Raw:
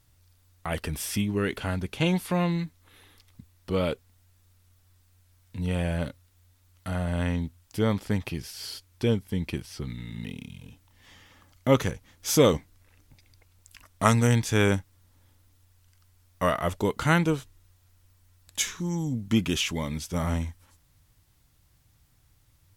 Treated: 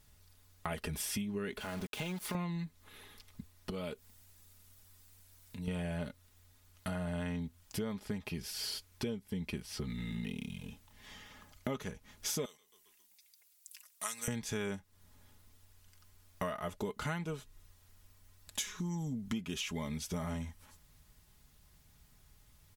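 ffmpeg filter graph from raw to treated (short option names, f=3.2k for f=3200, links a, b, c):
-filter_complex "[0:a]asettb=1/sr,asplit=3[a][b][c];[a]atrim=end=1.604[d];[b]atrim=start=1.6:end=2.35,asetpts=PTS-STARTPTS,afade=t=in:d=0.004:c=qsin,afade=t=out:st=0.746:d=0.004:c=qsin,lowshelf=f=170:g=-7.5,acompressor=threshold=-35dB:ratio=2.5:attack=3.2:release=140:knee=1:detection=peak,aeval=exprs='val(0)*gte(abs(val(0)),0.00794)':c=same[e];[c]atrim=start=2.346[f];[d][e]acrossfade=d=0.004:c1=hsin:c2=qsin[g];[g][f]acrossfade=d=0.004:c1=qsin:c2=hsin,asettb=1/sr,asplit=3[h][i][j];[h]atrim=end=3.704[k];[i]atrim=start=3.7:end=5.68,asetpts=PTS-STARTPTS,afade=t=in:d=0.004:c=qsin,afade=t=out:st=1.976:d=0.004:c=qsin,highshelf=f=5.4k:g=7.5,acompressor=threshold=-48dB:ratio=2:attack=3.2:release=140:knee=1:detection=peak[l];[j]atrim=start=5.676[m];[k][l]acrossfade=d=0.004:c1=hsin:c2=qsin[n];[n][m]acrossfade=d=0.004:c1=qsin:c2=hsin,asettb=1/sr,asplit=3[o][p][q];[o]atrim=end=12.454[r];[p]atrim=start=12.45:end=14.28,asetpts=PTS-STARTPTS,afade=t=in:d=0.004:c=qsin,afade=t=out:st=1.826:d=0.004:c=qsin,aderivative,asplit=5[s][t][u][v][w];[t]adelay=135,afreqshift=-47,volume=-23.5dB[x];[u]adelay=270,afreqshift=-94,volume=-28.4dB[y];[v]adelay=405,afreqshift=-141,volume=-33.3dB[z];[w]adelay=540,afreqshift=-188,volume=-38.1dB[aa];[s][x][y][z][aa]amix=inputs=5:normalize=0,atrim=end_sample=80703[ab];[q]atrim=start=14.276[ac];[r][ab]acrossfade=d=0.004:c1=hsin:c2=qsin[ad];[ad][ac]acrossfade=d=0.004:c1=qsin:c2=hsin,aecho=1:1:4.8:0.52,acompressor=threshold=-35dB:ratio=8"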